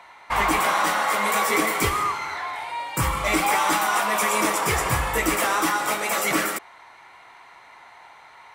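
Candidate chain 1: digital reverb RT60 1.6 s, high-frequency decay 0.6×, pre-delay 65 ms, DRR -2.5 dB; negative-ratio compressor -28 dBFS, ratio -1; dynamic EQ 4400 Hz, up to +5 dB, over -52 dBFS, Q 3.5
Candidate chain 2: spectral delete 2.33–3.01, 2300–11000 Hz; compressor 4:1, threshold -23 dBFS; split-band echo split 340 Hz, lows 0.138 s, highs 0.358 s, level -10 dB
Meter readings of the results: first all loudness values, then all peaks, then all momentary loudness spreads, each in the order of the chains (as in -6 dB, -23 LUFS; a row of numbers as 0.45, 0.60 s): -27.0, -25.5 LUFS; -8.5, -11.0 dBFS; 12, 17 LU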